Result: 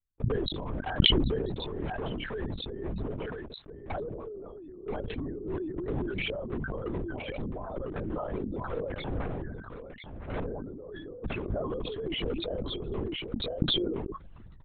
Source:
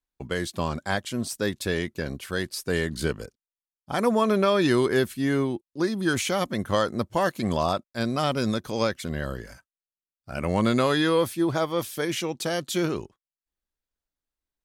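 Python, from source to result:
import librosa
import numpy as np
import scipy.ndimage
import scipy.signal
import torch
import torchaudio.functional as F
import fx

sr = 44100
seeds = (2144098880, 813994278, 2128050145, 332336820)

y = fx.envelope_sharpen(x, sr, power=3.0)
y = fx.lowpass(y, sr, hz=1900.0, slope=6)
y = fx.over_compress(y, sr, threshold_db=-30.0, ratio=-0.5)
y = 10.0 ** (-23.5 / 20.0) * (np.abs((y / 10.0 ** (-23.5 / 20.0) + 3.0) % 4.0 - 2.0) - 1.0)
y = y + 10.0 ** (-9.0 / 20.0) * np.pad(y, (int(1009 * sr / 1000.0), 0))[:len(y)]
y = fx.lpc_vocoder(y, sr, seeds[0], excitation='whisper', order=10)
y = fx.sustainer(y, sr, db_per_s=29.0)
y = y * librosa.db_to_amplitude(-3.5)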